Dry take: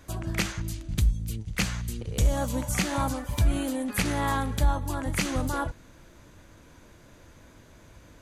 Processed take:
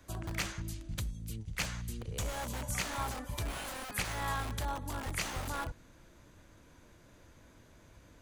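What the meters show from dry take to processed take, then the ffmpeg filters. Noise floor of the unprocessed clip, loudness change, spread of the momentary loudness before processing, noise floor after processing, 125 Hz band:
-53 dBFS, -9.0 dB, 7 LU, -60 dBFS, -11.0 dB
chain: -filter_complex "[0:a]acrossover=split=160|560|2100[s0][s1][s2][s3];[s0]alimiter=level_in=1.19:limit=0.0631:level=0:latency=1:release=355,volume=0.841[s4];[s1]aeval=exprs='(mod(42.2*val(0)+1,2)-1)/42.2':c=same[s5];[s4][s5][s2][s3]amix=inputs=4:normalize=0,volume=0.473"

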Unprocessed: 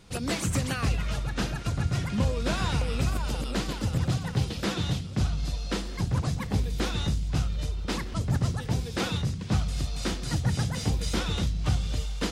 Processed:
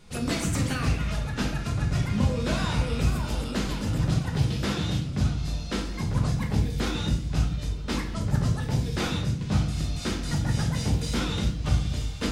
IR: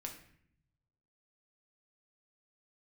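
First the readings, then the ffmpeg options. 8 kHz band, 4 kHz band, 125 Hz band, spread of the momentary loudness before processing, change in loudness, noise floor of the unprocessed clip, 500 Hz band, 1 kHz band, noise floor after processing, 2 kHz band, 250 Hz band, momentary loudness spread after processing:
0.0 dB, +0.5 dB, +2.0 dB, 4 LU, +1.5 dB, -35 dBFS, +1.0 dB, +0.5 dB, -33 dBFS, +1.0 dB, +3.0 dB, 4 LU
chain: -filter_complex "[1:a]atrim=start_sample=2205[s0];[0:a][s0]afir=irnorm=-1:irlink=0,volume=1.5"

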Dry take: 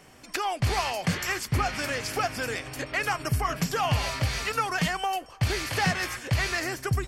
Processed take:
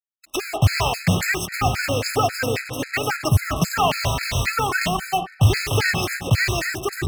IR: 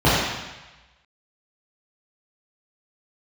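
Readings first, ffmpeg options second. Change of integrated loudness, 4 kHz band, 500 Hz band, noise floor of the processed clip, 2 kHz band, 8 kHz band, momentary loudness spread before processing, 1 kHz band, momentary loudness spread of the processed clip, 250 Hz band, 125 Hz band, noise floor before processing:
+6.5 dB, +6.0 dB, +7.0 dB, -47 dBFS, +5.5 dB, +6.5 dB, 5 LU, +5.0 dB, 6 LU, +6.5 dB, +8.0 dB, -49 dBFS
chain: -filter_complex "[0:a]acrusher=bits=5:mix=0:aa=0.5,asplit=2[s0][s1];[1:a]atrim=start_sample=2205,asetrate=33075,aresample=44100[s2];[s1][s2]afir=irnorm=-1:irlink=0,volume=0.0168[s3];[s0][s3]amix=inputs=2:normalize=0,afftfilt=real='re*gt(sin(2*PI*3.7*pts/sr)*(1-2*mod(floor(b*sr/1024/1300),2)),0)':imag='im*gt(sin(2*PI*3.7*pts/sr)*(1-2*mod(floor(b*sr/1024/1300),2)),0)':win_size=1024:overlap=0.75,volume=2.66"

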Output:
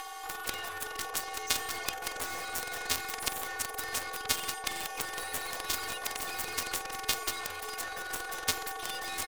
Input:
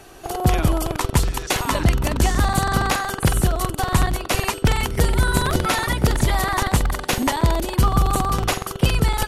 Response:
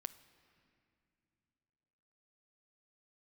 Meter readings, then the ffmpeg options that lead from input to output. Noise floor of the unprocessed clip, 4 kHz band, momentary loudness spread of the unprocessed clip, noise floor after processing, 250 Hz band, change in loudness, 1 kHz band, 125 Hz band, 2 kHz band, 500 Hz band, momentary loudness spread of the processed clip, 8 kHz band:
-35 dBFS, -8.0 dB, 3 LU, -42 dBFS, -26.0 dB, -13.5 dB, -14.5 dB, -33.5 dB, -10.0 dB, -17.5 dB, 5 LU, -7.0 dB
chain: -af "highpass=f=65:w=0.5412,highpass=f=65:w=1.3066,equalizer=f=13000:w=6.9:g=-5.5,afftfilt=real='hypot(re,im)*cos(PI*b)':imag='0':win_size=512:overlap=0.75,acompressor=mode=upward:threshold=0.0282:ratio=2.5,afreqshift=430,aeval=exprs='0.708*(cos(1*acos(clip(val(0)/0.708,-1,1)))-cos(1*PI/2))+0.2*(cos(5*acos(clip(val(0)/0.708,-1,1)))-cos(5*PI/2))':c=same,alimiter=limit=0.299:level=0:latency=1:release=132,acontrast=65,aecho=1:1:589|1178|1767|2356:0.141|0.0622|0.0273|0.012,afftfilt=real='re*lt(hypot(re,im),0.891)':imag='im*lt(hypot(re,im),0.891)':win_size=1024:overlap=0.75,equalizer=f=240:w=1.1:g=-14,aeval=exprs='0.794*(cos(1*acos(clip(val(0)/0.794,-1,1)))-cos(1*PI/2))+0.316*(cos(3*acos(clip(val(0)/0.794,-1,1)))-cos(3*PI/2))+0.0178*(cos(4*acos(clip(val(0)/0.794,-1,1)))-cos(4*PI/2))+0.0282*(cos(6*acos(clip(val(0)/0.794,-1,1)))-cos(6*PI/2))+0.02*(cos(8*acos(clip(val(0)/0.794,-1,1)))-cos(8*PI/2))':c=same"

